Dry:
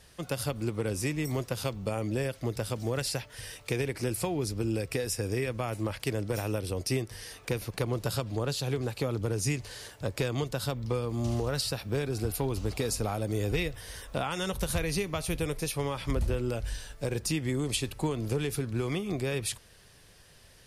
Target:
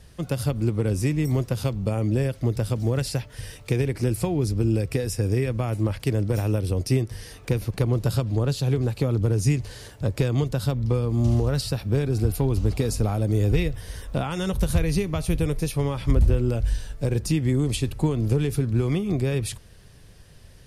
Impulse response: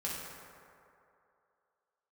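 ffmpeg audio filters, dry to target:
-af "lowshelf=frequency=340:gain=12"

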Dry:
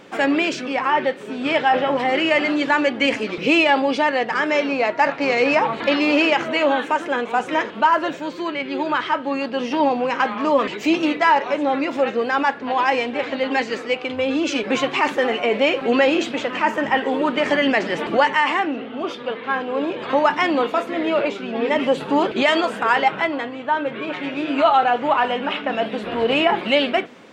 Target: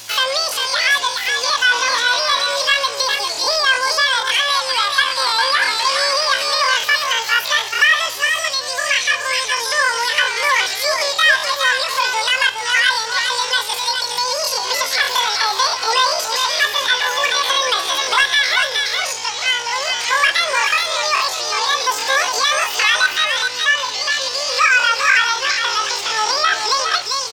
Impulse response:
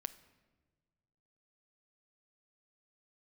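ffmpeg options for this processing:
-filter_complex "[0:a]asplit=2[link_01][link_02];[link_02]highpass=frequency=720:poles=1,volume=7dB,asoftclip=type=tanh:threshold=-4.5dB[link_03];[link_01][link_03]amix=inputs=2:normalize=0,lowpass=frequency=4700:poles=1,volume=-6dB,aecho=1:1:412:0.501,acrossover=split=130|1300[link_04][link_05][link_06];[link_06]acompressor=threshold=-29dB:ratio=16[link_07];[link_04][link_05][link_07]amix=inputs=3:normalize=0,aeval=exprs='val(0)+0.00316*(sin(2*PI*60*n/s)+sin(2*PI*2*60*n/s)/2+sin(2*PI*3*60*n/s)/3+sin(2*PI*4*60*n/s)/4+sin(2*PI*5*60*n/s)/5)':channel_layout=same,acrossover=split=2800[link_08][link_09];[link_09]acompressor=threshold=-44dB:ratio=4:attack=1:release=60[link_10];[link_08][link_10]amix=inputs=2:normalize=0,asetrate=83250,aresample=44100,atempo=0.529732,crystalizer=i=5.5:c=0,asplit=2[link_11][link_12];[1:a]atrim=start_sample=2205,highshelf=frequency=2300:gain=12[link_13];[link_12][link_13]afir=irnorm=-1:irlink=0,volume=-3dB[link_14];[link_11][link_14]amix=inputs=2:normalize=0,volume=-7dB"

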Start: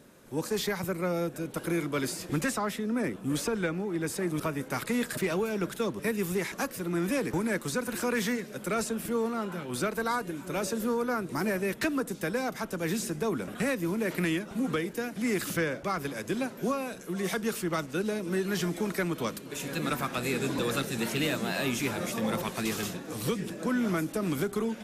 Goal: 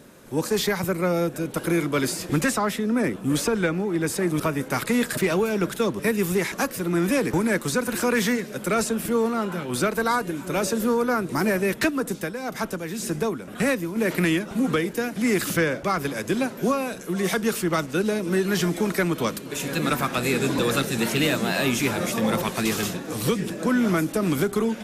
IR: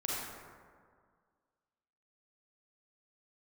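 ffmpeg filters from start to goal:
-filter_complex "[0:a]asplit=3[link_01][link_02][link_03];[link_01]afade=type=out:start_time=11.89:duration=0.02[link_04];[link_02]tremolo=f=1.9:d=0.66,afade=type=in:start_time=11.89:duration=0.02,afade=type=out:start_time=13.95:duration=0.02[link_05];[link_03]afade=type=in:start_time=13.95:duration=0.02[link_06];[link_04][link_05][link_06]amix=inputs=3:normalize=0,volume=7dB"

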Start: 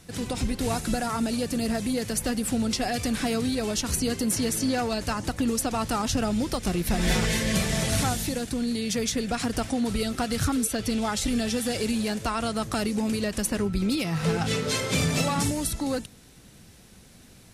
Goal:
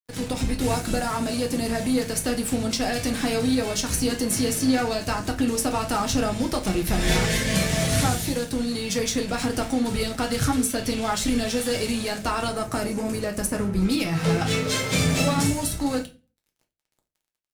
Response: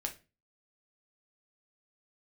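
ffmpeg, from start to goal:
-filter_complex "[0:a]asettb=1/sr,asplit=3[link_01][link_02][link_03];[link_01]atrim=end=12.494[link_04];[link_02]atrim=start=12.49:end=13.85,asetpts=PTS-STARTPTS,afade=type=in:duration=0.004:curve=qsin,afade=type=out:start_time=1.356:duration=0.004:curve=qsin,equalizer=frequency=3400:width=1.2:gain=-9[link_05];[link_03]atrim=start=13.846[link_06];[link_04][link_05]acrossfade=duration=0.004:curve1=hsin:curve2=qsin[link_07];[link_07][link_06]acrossfade=duration=0.004:curve1=qsin:curve2=hsin,aeval=exprs='sgn(val(0))*max(abs(val(0))-0.00794,0)':channel_layout=same[link_08];[1:a]atrim=start_sample=2205[link_09];[link_08][link_09]afir=irnorm=-1:irlink=0,volume=3.5dB"

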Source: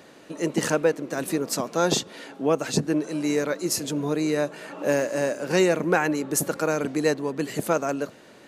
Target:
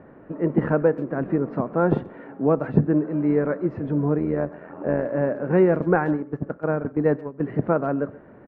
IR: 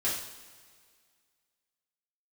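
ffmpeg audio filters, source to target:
-filter_complex "[0:a]lowpass=frequency=1700:width=0.5412,lowpass=frequency=1700:width=1.3066,aemphasis=mode=reproduction:type=bsi,asplit=3[link_01][link_02][link_03];[link_01]afade=type=out:start_time=4.17:duration=0.02[link_04];[link_02]tremolo=f=84:d=0.667,afade=type=in:start_time=4.17:duration=0.02,afade=type=out:start_time=5.05:duration=0.02[link_05];[link_03]afade=type=in:start_time=5.05:duration=0.02[link_06];[link_04][link_05][link_06]amix=inputs=3:normalize=0,asplit=3[link_07][link_08][link_09];[link_07]afade=type=out:start_time=5.7:duration=0.02[link_10];[link_08]agate=range=-16dB:threshold=-21dB:ratio=16:detection=peak,afade=type=in:start_time=5.7:duration=0.02,afade=type=out:start_time=7.4:duration=0.02[link_11];[link_09]afade=type=in:start_time=7.4:duration=0.02[link_12];[link_10][link_11][link_12]amix=inputs=3:normalize=0,asplit=2[link_13][link_14];[link_14]adelay=130,highpass=300,lowpass=3400,asoftclip=type=hard:threshold=-14dB,volume=-20dB[link_15];[link_13][link_15]amix=inputs=2:normalize=0,asplit=2[link_16][link_17];[1:a]atrim=start_sample=2205,atrim=end_sample=6174[link_18];[link_17][link_18]afir=irnorm=-1:irlink=0,volume=-24.5dB[link_19];[link_16][link_19]amix=inputs=2:normalize=0"

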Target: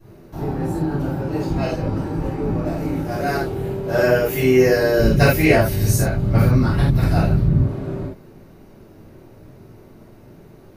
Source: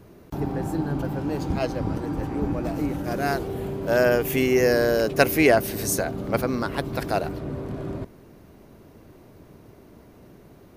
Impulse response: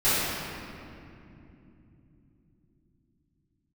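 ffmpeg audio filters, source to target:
-filter_complex "[0:a]asplit=3[link_01][link_02][link_03];[link_01]afade=type=out:start_time=4.98:duration=0.02[link_04];[link_02]asubboost=boost=10:cutoff=170,afade=type=in:start_time=4.98:duration=0.02,afade=type=out:start_time=7.62:duration=0.02[link_05];[link_03]afade=type=in:start_time=7.62:duration=0.02[link_06];[link_04][link_05][link_06]amix=inputs=3:normalize=0[link_07];[1:a]atrim=start_sample=2205,afade=type=out:start_time=0.15:duration=0.01,atrim=end_sample=7056[link_08];[link_07][link_08]afir=irnorm=-1:irlink=0,volume=-10.5dB"

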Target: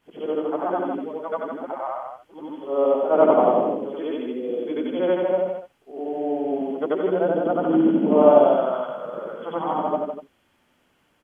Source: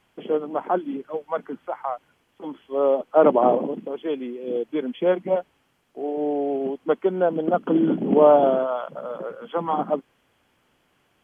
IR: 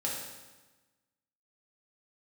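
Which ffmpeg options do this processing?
-af "afftfilt=real='re':imag='-im':win_size=8192:overlap=0.75,aecho=1:1:96.21|157.4:0.316|0.501,volume=3.5dB"

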